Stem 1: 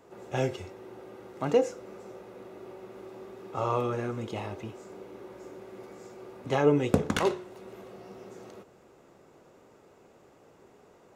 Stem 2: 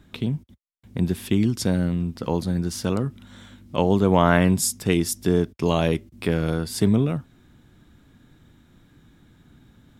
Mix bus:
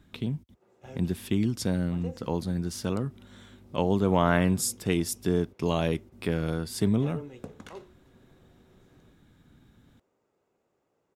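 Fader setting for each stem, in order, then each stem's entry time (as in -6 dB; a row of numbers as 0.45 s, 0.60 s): -18.0 dB, -5.5 dB; 0.50 s, 0.00 s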